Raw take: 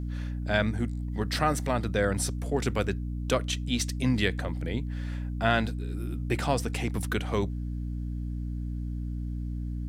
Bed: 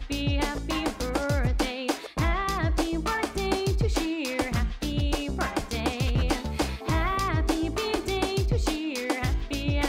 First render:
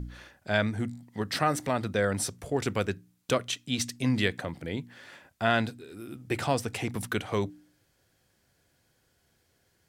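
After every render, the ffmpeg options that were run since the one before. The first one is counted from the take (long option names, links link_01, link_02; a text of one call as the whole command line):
ffmpeg -i in.wav -af "bandreject=frequency=60:width_type=h:width=4,bandreject=frequency=120:width_type=h:width=4,bandreject=frequency=180:width_type=h:width=4,bandreject=frequency=240:width_type=h:width=4,bandreject=frequency=300:width_type=h:width=4" out.wav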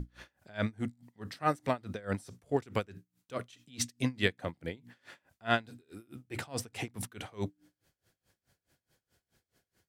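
ffmpeg -i in.wav -af "aeval=exprs='val(0)*pow(10,-26*(0.5-0.5*cos(2*PI*4.7*n/s))/20)':channel_layout=same" out.wav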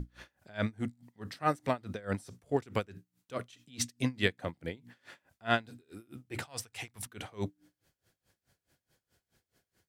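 ffmpeg -i in.wav -filter_complex "[0:a]asettb=1/sr,asplit=3[link_01][link_02][link_03];[link_01]atrim=end=6.464[link_04];[link_02]atrim=start=6.46:end=7.06,asetpts=PTS-STARTPTS,afade=type=in:duration=0.004:curve=qsin,afade=type=out:start_time=0.596:duration=0.004:curve=qsin,equalizer=frequency=260:width=0.49:gain=-14[link_05];[link_03]atrim=start=7.056[link_06];[link_04][link_05]acrossfade=duration=0.004:curve1=hsin:curve2=qsin[link_07];[link_07][link_06]acrossfade=duration=0.004:curve1=qsin:curve2=hsin" out.wav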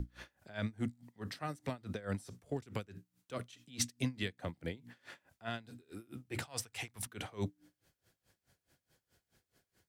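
ffmpeg -i in.wav -filter_complex "[0:a]alimiter=limit=-20.5dB:level=0:latency=1:release=254,acrossover=split=250|3000[link_01][link_02][link_03];[link_02]acompressor=threshold=-39dB:ratio=6[link_04];[link_01][link_04][link_03]amix=inputs=3:normalize=0" out.wav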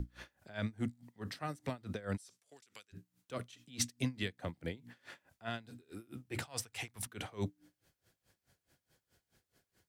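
ffmpeg -i in.wav -filter_complex "[0:a]asplit=3[link_01][link_02][link_03];[link_01]afade=type=out:start_time=2.16:duration=0.02[link_04];[link_02]bandpass=frequency=6700:width_type=q:width=0.65,afade=type=in:start_time=2.16:duration=0.02,afade=type=out:start_time=2.92:duration=0.02[link_05];[link_03]afade=type=in:start_time=2.92:duration=0.02[link_06];[link_04][link_05][link_06]amix=inputs=3:normalize=0" out.wav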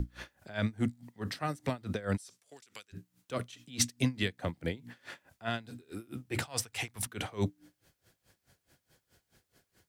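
ffmpeg -i in.wav -af "volume=6dB" out.wav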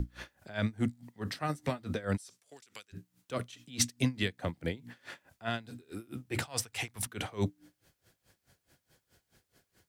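ffmpeg -i in.wav -filter_complex "[0:a]asettb=1/sr,asplit=3[link_01][link_02][link_03];[link_01]atrim=end=1.484[link_04];[link_02]atrim=start=1.48:end=2.04,asetpts=PTS-STARTPTS,afade=type=in:duration=0.004:curve=qsin,afade=type=out:start_time=0.556:duration=0.004:curve=qsin,asplit=2[link_05][link_06];[link_06]adelay=13,volume=-8dB[link_07];[link_05][link_07]amix=inputs=2:normalize=0,atrim=end_sample=24696[link_08];[link_03]atrim=start=2.036[link_09];[link_04][link_08]acrossfade=duration=0.004:curve1=hsin:curve2=qsin[link_10];[link_10][link_09]acrossfade=duration=0.004:curve1=qsin:curve2=hsin" out.wav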